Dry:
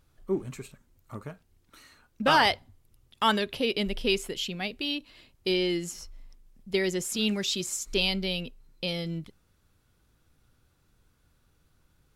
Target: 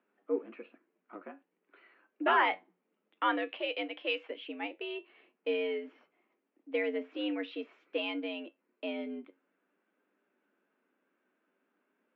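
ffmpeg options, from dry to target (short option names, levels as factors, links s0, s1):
-filter_complex "[0:a]flanger=delay=9.3:depth=2.2:regen=67:speed=0.5:shape=triangular,asettb=1/sr,asplit=3[s0][s1][s2];[s0]atrim=end=3.504[s3];[s1]atrim=start=3.5:end=4.3,asetpts=PTS-STARTPTS,afade=t=in:d=0.004:c=qsin,afade=t=out:st=0.796:d=0.004:c=qsin,aemphasis=mode=production:type=riaa[s4];[s2]atrim=start=4.296[s5];[s3][s4]acrossfade=d=0.004:c1=hsin:c2=qsin[s6];[s6][s5]acrossfade=d=0.004:c1=qsin:c2=hsin,highpass=f=170:t=q:w=0.5412,highpass=f=170:t=q:w=1.307,lowpass=f=2600:t=q:w=0.5176,lowpass=f=2600:t=q:w=0.7071,lowpass=f=2600:t=q:w=1.932,afreqshift=88"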